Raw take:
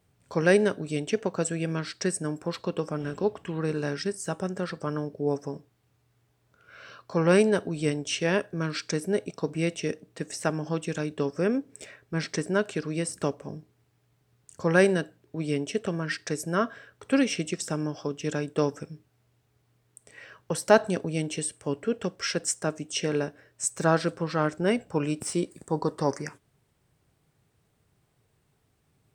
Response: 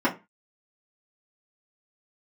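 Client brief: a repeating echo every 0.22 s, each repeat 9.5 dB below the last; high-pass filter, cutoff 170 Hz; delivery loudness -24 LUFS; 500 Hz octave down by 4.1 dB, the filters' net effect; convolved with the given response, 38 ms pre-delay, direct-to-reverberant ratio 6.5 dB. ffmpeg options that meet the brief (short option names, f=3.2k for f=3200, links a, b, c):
-filter_complex "[0:a]highpass=170,equalizer=f=500:t=o:g=-5,aecho=1:1:220|440|660|880:0.335|0.111|0.0365|0.012,asplit=2[a][b];[1:a]atrim=start_sample=2205,adelay=38[c];[b][c]afir=irnorm=-1:irlink=0,volume=-21dB[d];[a][d]amix=inputs=2:normalize=0,volume=5dB"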